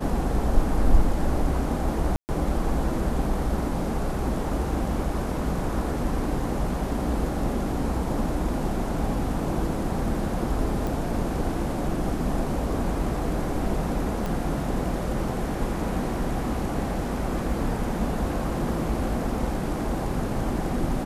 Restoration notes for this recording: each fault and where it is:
0:02.16–0:02.29: drop-out 129 ms
0:10.87: click
0:14.26: click

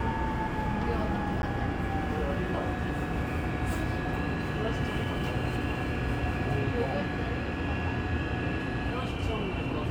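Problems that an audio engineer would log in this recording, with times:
0:01.42–0:01.43: drop-out

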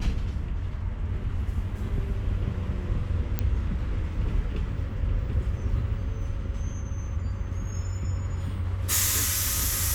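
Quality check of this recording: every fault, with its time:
0:03.39: click −12 dBFS

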